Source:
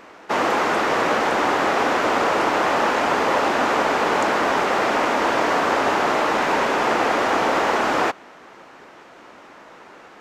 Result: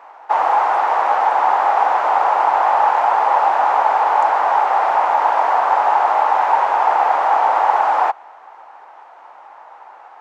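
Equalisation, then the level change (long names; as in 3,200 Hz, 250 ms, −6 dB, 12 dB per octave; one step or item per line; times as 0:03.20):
high-pass with resonance 830 Hz, resonance Q 4.9
high-shelf EQ 2,300 Hz −9.5 dB
parametric band 6,200 Hz −3 dB 2.9 octaves
−1.0 dB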